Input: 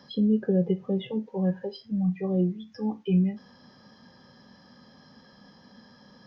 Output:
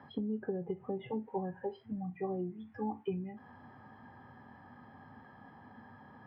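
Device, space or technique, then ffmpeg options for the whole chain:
bass amplifier: -af "acompressor=threshold=0.0282:ratio=4,highpass=60,equalizer=f=99:t=q:w=4:g=9,equalizer=f=190:t=q:w=4:g=-10,equalizer=f=530:t=q:w=4:g=-9,equalizer=f=810:t=q:w=4:g=8,lowpass=f=2200:w=0.5412,lowpass=f=2200:w=1.3066,volume=1.12"

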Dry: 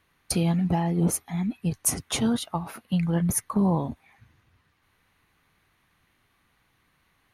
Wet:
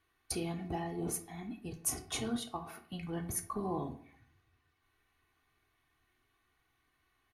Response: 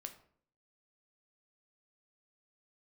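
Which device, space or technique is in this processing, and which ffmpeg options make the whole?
microphone above a desk: -filter_complex "[0:a]aecho=1:1:2.7:0.64[s0];[1:a]atrim=start_sample=2205[s1];[s0][s1]afir=irnorm=-1:irlink=0,volume=0.501"

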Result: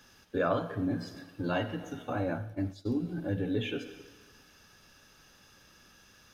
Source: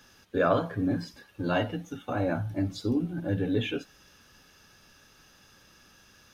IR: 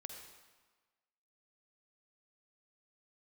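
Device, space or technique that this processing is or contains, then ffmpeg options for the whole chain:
compressed reverb return: -filter_complex "[0:a]asplit=2[s0][s1];[1:a]atrim=start_sample=2205[s2];[s1][s2]afir=irnorm=-1:irlink=0,acompressor=threshold=0.02:ratio=6,volume=1.58[s3];[s0][s3]amix=inputs=2:normalize=0,asplit=3[s4][s5][s6];[s4]afade=t=out:st=2.22:d=0.02[s7];[s5]agate=range=0.0224:threshold=0.0708:ratio=3:detection=peak,afade=t=in:st=2.22:d=0.02,afade=t=out:st=3.01:d=0.02[s8];[s6]afade=t=in:st=3.01:d=0.02[s9];[s7][s8][s9]amix=inputs=3:normalize=0,volume=0.447"

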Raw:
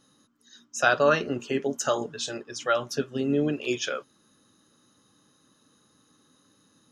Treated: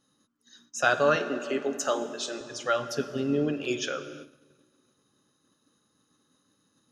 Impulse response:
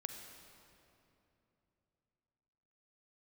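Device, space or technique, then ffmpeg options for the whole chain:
keyed gated reverb: -filter_complex "[0:a]asplit=3[s0][s1][s2];[1:a]atrim=start_sample=2205[s3];[s1][s3]afir=irnorm=-1:irlink=0[s4];[s2]apad=whole_len=305132[s5];[s4][s5]sidechaingate=range=0.0224:threshold=0.001:ratio=16:detection=peak,volume=1.58[s6];[s0][s6]amix=inputs=2:normalize=0,asettb=1/sr,asplit=3[s7][s8][s9];[s7]atrim=end=1.164[s10];[s8]atrim=start=1.16:end=2.41,asetpts=PTS-STARTPTS,afade=t=in:d=0.004:c=qsin,afade=t=out:st=1.246:d=0.004:c=qsin,highpass=f=200:w=0.5412,highpass=f=200:w=1.3066[s11];[s9]atrim=start=2.406[s12];[s10][s11]acrossfade=d=0.004:c1=hsin:c2=qsin[s13];[s13][s12]acrossfade=d=0.004:c1=qsin:c2=hsin,volume=0.376"

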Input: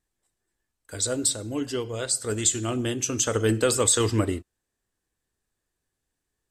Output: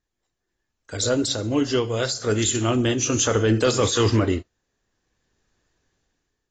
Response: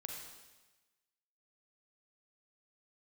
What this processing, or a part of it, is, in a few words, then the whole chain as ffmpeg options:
low-bitrate web radio: -af "dynaudnorm=f=370:g=5:m=4.47,alimiter=limit=0.299:level=0:latency=1:release=13" -ar 16000 -c:a aac -b:a 24k

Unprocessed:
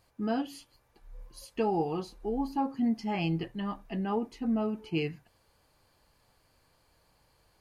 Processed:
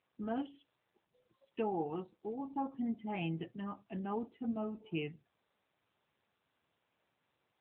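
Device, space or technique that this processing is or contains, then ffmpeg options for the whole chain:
mobile call with aggressive noise cancelling: -af "highpass=110,afftdn=nr=18:nf=-51,volume=0.501" -ar 8000 -c:a libopencore_amrnb -b:a 10200

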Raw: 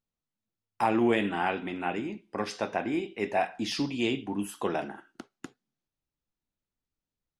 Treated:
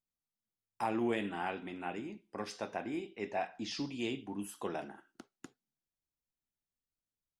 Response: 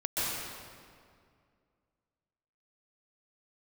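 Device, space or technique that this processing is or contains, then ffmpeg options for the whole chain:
exciter from parts: -filter_complex "[0:a]asplit=2[s0][s1];[s1]highpass=3800,asoftclip=type=tanh:threshold=0.0237,volume=0.562[s2];[s0][s2]amix=inputs=2:normalize=0,asettb=1/sr,asplit=3[s3][s4][s5];[s3]atrim=end=3.114[s6];[s4]atrim=start=3.11:end=3.85,asetpts=PTS-STARTPTS,afade=t=in:d=0.004:c=qsin,afade=t=out:st=0.736:d=0.004:c=qsin,lowpass=f=7200:w=0.5412,lowpass=f=7200:w=1.3066[s7];[s5]atrim=start=3.846[s8];[s6][s7]acrossfade=d=0.004:c1=hsin:c2=qsin[s9];[s9][s8]acrossfade=d=0.004:c1=qsin:c2=hsin,volume=0.376"

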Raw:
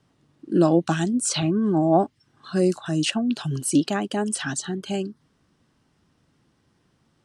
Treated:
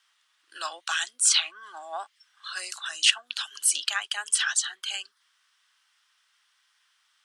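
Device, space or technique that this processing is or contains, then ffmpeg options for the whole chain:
headphones lying on a table: -af "highpass=f=1300:w=0.5412,highpass=f=1300:w=1.3066,equalizer=f=3300:t=o:w=0.26:g=5,volume=1.78"

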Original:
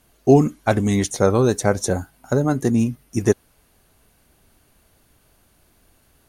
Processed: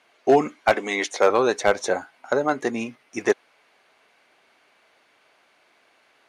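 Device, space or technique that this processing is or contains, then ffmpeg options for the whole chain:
megaphone: -filter_complex "[0:a]asettb=1/sr,asplit=3[s0][s1][s2];[s0]atrim=end=0.744[s3];[s1]atrim=start=0.74:end=1.3,asetpts=PTS-STARTPTS,afade=t=in:d=0.004:c=qsin,afade=t=out:st=0.556:d=0.004:c=qsin,highpass=f=240:w=0.5412,highpass=f=240:w=1.3066[s4];[s2]atrim=start=1.296[s5];[s3][s4]acrossfade=d=0.004:c1=hsin:c2=qsin[s6];[s6][s5]acrossfade=d=0.004:c1=qsin:c2=hsin,highpass=570,lowpass=3800,equalizer=f=2200:t=o:w=0.34:g=6,asoftclip=type=hard:threshold=0.224,volume=1.68"

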